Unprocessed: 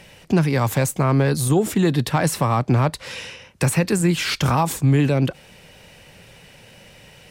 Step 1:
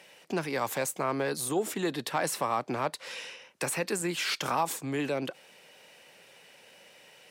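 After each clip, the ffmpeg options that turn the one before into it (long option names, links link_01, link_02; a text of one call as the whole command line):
ffmpeg -i in.wav -af "highpass=360,volume=-7dB" out.wav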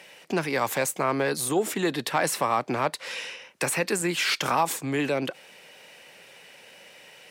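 ffmpeg -i in.wav -af "equalizer=frequency=2100:width=1.5:gain=2.5,volume=4.5dB" out.wav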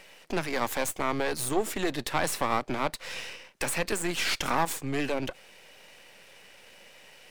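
ffmpeg -i in.wav -af "aeval=exprs='if(lt(val(0),0),0.251*val(0),val(0))':channel_layout=same" out.wav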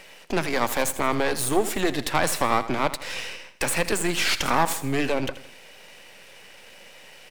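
ffmpeg -i in.wav -af "aecho=1:1:81|162|243|324:0.188|0.0829|0.0365|0.016,volume=5dB" out.wav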